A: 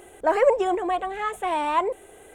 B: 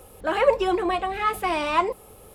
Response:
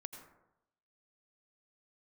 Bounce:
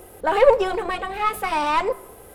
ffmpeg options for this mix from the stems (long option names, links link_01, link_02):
-filter_complex "[0:a]lowpass=1800,volume=0.5dB[link_01];[1:a]highshelf=frequency=9300:gain=5.5,aeval=exprs='(tanh(5.01*val(0)+0.6)-tanh(0.6))/5.01':channel_layout=same,volume=1dB,asplit=2[link_02][link_03];[link_03]volume=-7.5dB[link_04];[2:a]atrim=start_sample=2205[link_05];[link_04][link_05]afir=irnorm=-1:irlink=0[link_06];[link_01][link_02][link_06]amix=inputs=3:normalize=0"